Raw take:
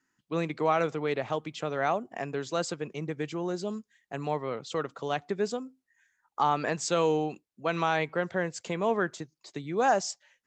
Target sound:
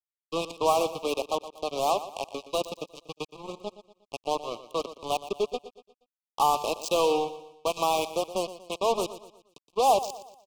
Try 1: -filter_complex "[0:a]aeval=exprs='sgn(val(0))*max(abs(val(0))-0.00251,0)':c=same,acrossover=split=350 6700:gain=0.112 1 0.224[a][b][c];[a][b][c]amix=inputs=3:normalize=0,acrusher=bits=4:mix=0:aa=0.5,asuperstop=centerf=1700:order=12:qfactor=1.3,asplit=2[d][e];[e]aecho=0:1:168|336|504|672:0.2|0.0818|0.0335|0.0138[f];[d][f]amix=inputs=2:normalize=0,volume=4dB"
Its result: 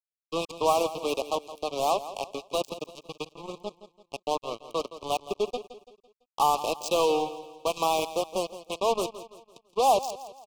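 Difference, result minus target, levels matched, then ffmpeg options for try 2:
echo 49 ms late
-filter_complex "[0:a]aeval=exprs='sgn(val(0))*max(abs(val(0))-0.00251,0)':c=same,acrossover=split=350 6700:gain=0.112 1 0.224[a][b][c];[a][b][c]amix=inputs=3:normalize=0,acrusher=bits=4:mix=0:aa=0.5,asuperstop=centerf=1700:order=12:qfactor=1.3,asplit=2[d][e];[e]aecho=0:1:119|238|357|476:0.2|0.0818|0.0335|0.0138[f];[d][f]amix=inputs=2:normalize=0,volume=4dB"

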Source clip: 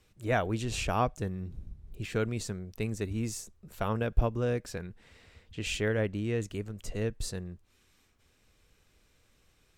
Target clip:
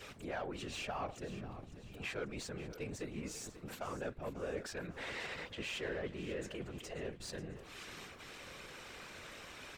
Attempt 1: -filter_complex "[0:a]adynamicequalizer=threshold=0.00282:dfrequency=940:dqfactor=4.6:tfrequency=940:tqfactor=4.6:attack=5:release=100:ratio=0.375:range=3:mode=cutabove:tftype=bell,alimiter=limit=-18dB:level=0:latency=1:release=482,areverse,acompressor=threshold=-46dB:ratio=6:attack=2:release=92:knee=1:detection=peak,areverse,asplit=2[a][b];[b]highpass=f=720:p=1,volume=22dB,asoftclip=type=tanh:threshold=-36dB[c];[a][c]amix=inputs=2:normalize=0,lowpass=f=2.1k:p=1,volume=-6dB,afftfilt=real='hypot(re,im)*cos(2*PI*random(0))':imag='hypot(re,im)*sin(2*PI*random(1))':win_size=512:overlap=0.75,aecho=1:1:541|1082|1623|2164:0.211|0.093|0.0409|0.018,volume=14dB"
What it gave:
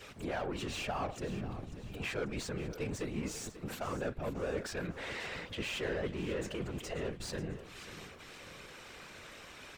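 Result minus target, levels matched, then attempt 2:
compressor: peak gain reduction -8 dB
-filter_complex "[0:a]adynamicequalizer=threshold=0.00282:dfrequency=940:dqfactor=4.6:tfrequency=940:tqfactor=4.6:attack=5:release=100:ratio=0.375:range=3:mode=cutabove:tftype=bell,alimiter=limit=-18dB:level=0:latency=1:release=482,areverse,acompressor=threshold=-55.5dB:ratio=6:attack=2:release=92:knee=1:detection=peak,areverse,asplit=2[a][b];[b]highpass=f=720:p=1,volume=22dB,asoftclip=type=tanh:threshold=-36dB[c];[a][c]amix=inputs=2:normalize=0,lowpass=f=2.1k:p=1,volume=-6dB,afftfilt=real='hypot(re,im)*cos(2*PI*random(0))':imag='hypot(re,im)*sin(2*PI*random(1))':win_size=512:overlap=0.75,aecho=1:1:541|1082|1623|2164:0.211|0.093|0.0409|0.018,volume=14dB"

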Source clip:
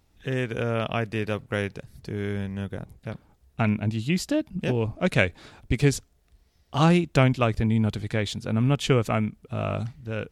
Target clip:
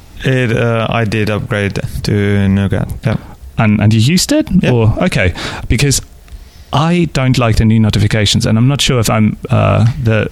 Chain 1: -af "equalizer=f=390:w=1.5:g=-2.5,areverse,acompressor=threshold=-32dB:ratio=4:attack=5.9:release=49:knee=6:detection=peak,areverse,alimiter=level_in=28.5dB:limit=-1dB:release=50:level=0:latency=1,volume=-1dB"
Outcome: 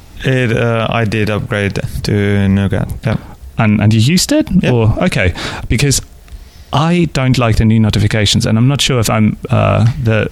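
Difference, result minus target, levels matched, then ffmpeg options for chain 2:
compressor: peak gain reduction +8.5 dB
-af "equalizer=f=390:w=1.5:g=-2.5,areverse,acompressor=threshold=-20.5dB:ratio=4:attack=5.9:release=49:knee=6:detection=peak,areverse,alimiter=level_in=28.5dB:limit=-1dB:release=50:level=0:latency=1,volume=-1dB"

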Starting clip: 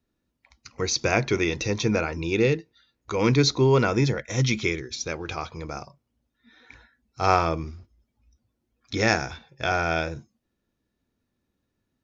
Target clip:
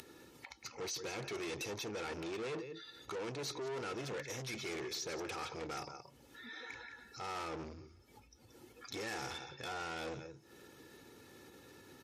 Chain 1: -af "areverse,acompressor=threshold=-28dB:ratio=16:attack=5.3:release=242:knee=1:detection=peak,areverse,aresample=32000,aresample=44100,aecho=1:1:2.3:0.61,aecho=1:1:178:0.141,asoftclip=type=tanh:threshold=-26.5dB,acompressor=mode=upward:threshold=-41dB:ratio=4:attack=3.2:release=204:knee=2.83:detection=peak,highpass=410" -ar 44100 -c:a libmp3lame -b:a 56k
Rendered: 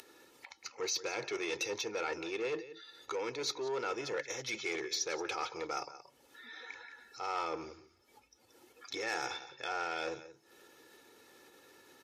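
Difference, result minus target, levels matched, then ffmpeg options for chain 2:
125 Hz band -13.0 dB; soft clip: distortion -9 dB
-af "areverse,acompressor=threshold=-28dB:ratio=16:attack=5.3:release=242:knee=1:detection=peak,areverse,aresample=32000,aresample=44100,aecho=1:1:2.3:0.61,aecho=1:1:178:0.141,asoftclip=type=tanh:threshold=-38dB,acompressor=mode=upward:threshold=-41dB:ratio=4:attack=3.2:release=204:knee=2.83:detection=peak,highpass=170" -ar 44100 -c:a libmp3lame -b:a 56k

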